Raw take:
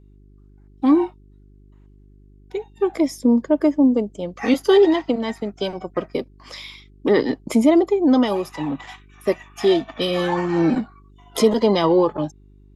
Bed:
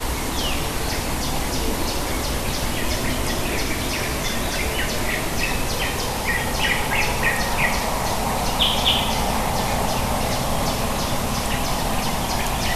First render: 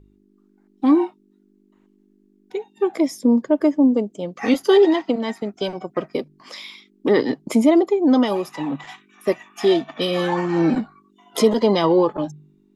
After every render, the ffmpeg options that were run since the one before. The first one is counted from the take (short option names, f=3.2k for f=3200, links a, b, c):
-af "bandreject=f=50:t=h:w=4,bandreject=f=100:t=h:w=4,bandreject=f=150:t=h:w=4"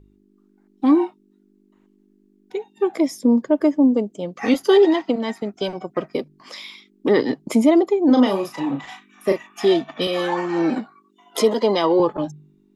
-filter_complex "[0:a]asettb=1/sr,asplit=3[a][b][c];[a]atrim=end=8.054[d];[b]atrim=start=8.05:end=9.47,asetpts=PTS-STARTPTS,afade=t=in:d=0.004:c=qsin,afade=t=out:st=1.416:d=0.004:c=qsin,asplit=2[e][f];[f]adelay=36,volume=-5.5dB[g];[e][g]amix=inputs=2:normalize=0,atrim=end_sample=62622[h];[c]atrim=start=9.466[i];[d][h]acrossfade=d=0.004:c1=hsin:c2=qsin[j];[j][i]acrossfade=d=0.004:c1=qsin:c2=hsin,asettb=1/sr,asplit=3[k][l][m];[k]atrim=end=10.074[n];[l]atrim=start=10.07:end=12,asetpts=PTS-STARTPTS,afade=t=in:d=0.004:c=qsin,afade=t=out:st=1.926:d=0.004:c=qsin,highpass=270[o];[m]atrim=start=11.996[p];[n][o]acrossfade=d=0.004:c1=hsin:c2=qsin[q];[q][p]acrossfade=d=0.004:c1=qsin:c2=hsin"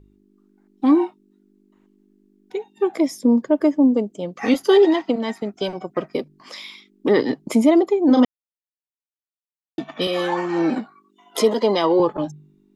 -filter_complex "[0:a]asplit=3[a][b][c];[a]atrim=end=8.25,asetpts=PTS-STARTPTS,afade=t=out:st=8.246:d=0.004:c=hsin[d];[b]atrim=start=8.25:end=9.78,asetpts=PTS-STARTPTS,volume=0[e];[c]atrim=start=9.78,asetpts=PTS-STARTPTS,afade=t=in:d=0.004:c=hsin[f];[d][e][f]concat=n=3:v=0:a=1"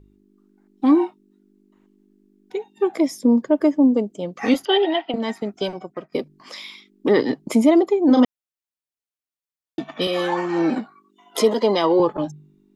-filter_complex "[0:a]asettb=1/sr,asplit=3[a][b][c];[a]atrim=end=4.654[d];[b]atrim=start=4.65:end=5.14,asetpts=PTS-STARTPTS,afade=t=in:d=0.004:c=qsin,afade=t=out:st=0.486:d=0.004:c=qsin,highpass=420,equalizer=f=470:t=q:w=4:g=-8,equalizer=f=710:t=q:w=4:g=7,equalizer=f=1.1k:t=q:w=4:g=-8,equalizer=f=3.1k:t=q:w=4:g=9,lowpass=f=3.5k:w=0.5412,lowpass=f=3.5k:w=1.3066[e];[c]atrim=start=5.136[f];[d][e]acrossfade=d=0.004:c1=hsin:c2=qsin[g];[g][f]acrossfade=d=0.004:c1=qsin:c2=hsin,asplit=2[h][i];[h]atrim=end=6.12,asetpts=PTS-STARTPTS,afade=t=out:st=5.64:d=0.48:silence=0.149624[j];[i]atrim=start=6.12,asetpts=PTS-STARTPTS,afade=t=in:d=0.004:c=hsin:silence=0.149624[k];[j][k]concat=n=2:v=0:a=1"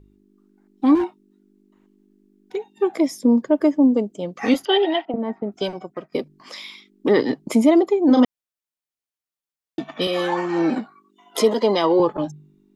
-filter_complex "[0:a]asettb=1/sr,asplit=3[a][b][c];[a]atrim=end=0.954[d];[b]atrim=start=0.95:end=2.71,asetpts=PTS-STARTPTS,afade=t=in:d=0.004:c=qsin,afade=t=out:st=1.756:d=0.004:c=qsin,asoftclip=type=hard:threshold=-17.5dB[e];[c]atrim=start=2.706[f];[d][e]acrossfade=d=0.004:c1=hsin:c2=qsin[g];[g][f]acrossfade=d=0.004:c1=qsin:c2=hsin,asettb=1/sr,asplit=3[h][i][j];[h]atrim=end=5.054[k];[i]atrim=start=5.05:end=5.52,asetpts=PTS-STARTPTS,afade=t=in:d=0.004:c=qsin,afade=t=out:st=0.466:d=0.004:c=qsin,lowpass=1k[l];[j]atrim=start=5.516[m];[k][l]acrossfade=d=0.004:c1=hsin:c2=qsin[n];[n][m]acrossfade=d=0.004:c1=qsin:c2=hsin"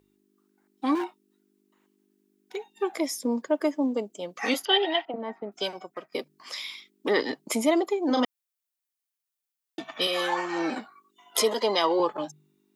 -af "highpass=f=950:p=1,highshelf=f=9.1k:g=7.5"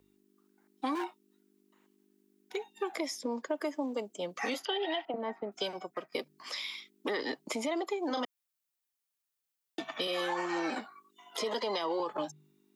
-filter_complex "[0:a]alimiter=limit=-19dB:level=0:latency=1:release=73,acrossover=split=330|710|6300[a][b][c][d];[a]acompressor=threshold=-43dB:ratio=4[e];[b]acompressor=threshold=-37dB:ratio=4[f];[c]acompressor=threshold=-35dB:ratio=4[g];[d]acompressor=threshold=-56dB:ratio=4[h];[e][f][g][h]amix=inputs=4:normalize=0"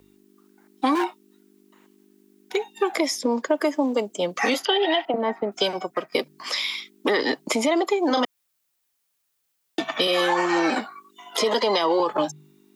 -af "volume=12dB"